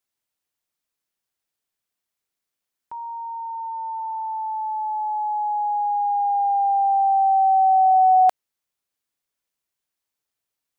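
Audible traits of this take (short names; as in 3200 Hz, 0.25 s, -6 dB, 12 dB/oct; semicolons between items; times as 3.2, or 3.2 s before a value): noise floor -85 dBFS; spectral tilt +2.0 dB/oct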